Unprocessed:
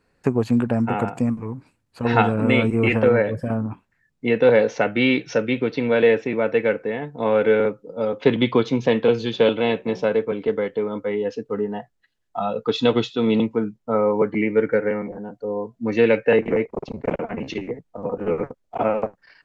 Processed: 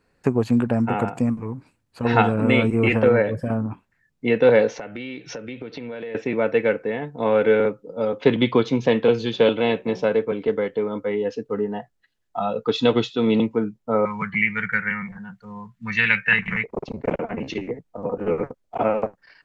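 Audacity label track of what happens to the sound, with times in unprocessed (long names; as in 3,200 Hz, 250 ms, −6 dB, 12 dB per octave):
4.750000	6.150000	downward compressor 8 to 1, threshold −30 dBFS
14.050000	16.640000	drawn EQ curve 130 Hz 0 dB, 190 Hz +4 dB, 270 Hz −23 dB, 570 Hz −22 dB, 1,100 Hz +2 dB, 1,800 Hz +11 dB, 5,200 Hz +2 dB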